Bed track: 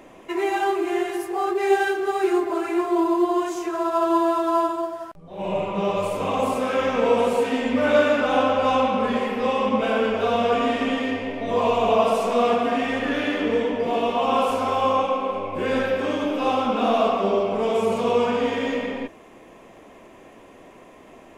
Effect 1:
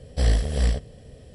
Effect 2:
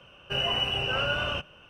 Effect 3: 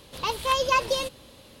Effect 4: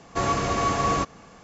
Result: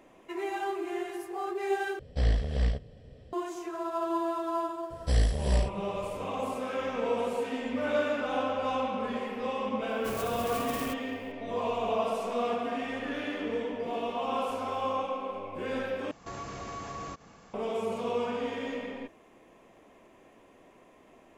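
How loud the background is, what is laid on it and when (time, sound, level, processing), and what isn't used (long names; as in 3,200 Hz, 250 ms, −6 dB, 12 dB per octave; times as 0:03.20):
bed track −10.5 dB
0:01.99: overwrite with 1 −5.5 dB + low-pass filter 4,000 Hz
0:04.90: mix in 1 −4.5 dB
0:09.89: mix in 4 −14 dB + converter with an unsteady clock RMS 0.084 ms
0:16.11: overwrite with 4 −6 dB + downward compressor 2.5 to 1, threshold −35 dBFS
not used: 2, 3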